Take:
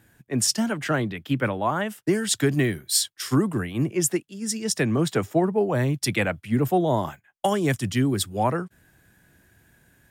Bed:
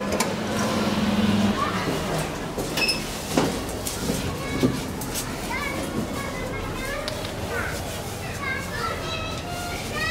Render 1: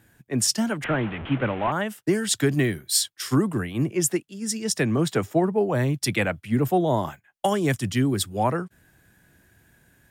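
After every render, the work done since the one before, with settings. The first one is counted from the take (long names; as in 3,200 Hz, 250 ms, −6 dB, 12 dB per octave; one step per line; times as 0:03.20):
0:00.84–0:01.72: linear delta modulator 16 kbit/s, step −28 dBFS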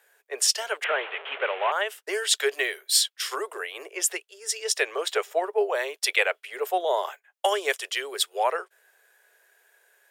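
Chebyshev high-pass filter 410 Hz, order 6
dynamic equaliser 3,000 Hz, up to +7 dB, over −44 dBFS, Q 1.1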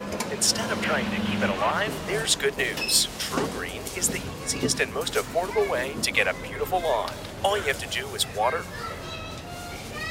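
mix in bed −6.5 dB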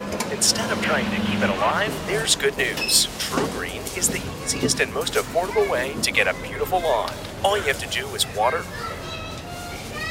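level +3.5 dB
brickwall limiter −3 dBFS, peak gain reduction 1 dB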